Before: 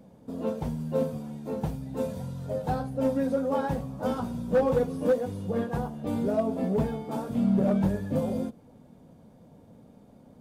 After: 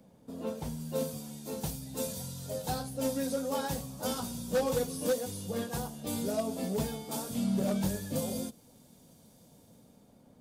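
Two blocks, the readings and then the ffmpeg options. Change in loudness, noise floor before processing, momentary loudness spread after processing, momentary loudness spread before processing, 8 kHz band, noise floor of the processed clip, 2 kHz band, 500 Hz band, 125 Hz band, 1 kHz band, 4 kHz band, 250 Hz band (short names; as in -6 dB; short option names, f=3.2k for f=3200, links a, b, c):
-5.5 dB, -54 dBFS, 8 LU, 9 LU, n/a, -60 dBFS, -2.0 dB, -6.0 dB, -6.5 dB, -5.5 dB, +8.5 dB, -6.5 dB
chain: -filter_complex "[0:a]highshelf=f=2.2k:g=8,acrossover=split=140|3800[a][b][c];[c]dynaudnorm=f=130:g=13:m=14dB[d];[a][b][d]amix=inputs=3:normalize=0,volume=-6.5dB"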